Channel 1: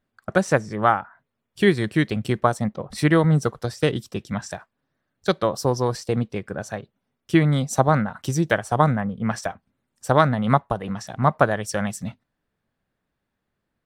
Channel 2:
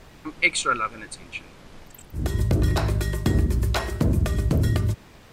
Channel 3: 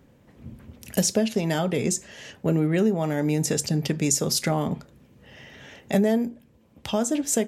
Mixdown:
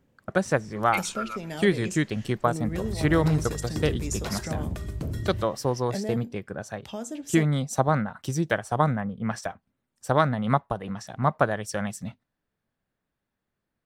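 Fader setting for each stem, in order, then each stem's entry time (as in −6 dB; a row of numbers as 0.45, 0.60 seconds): −4.5, −10.5, −11.0 decibels; 0.00, 0.50, 0.00 seconds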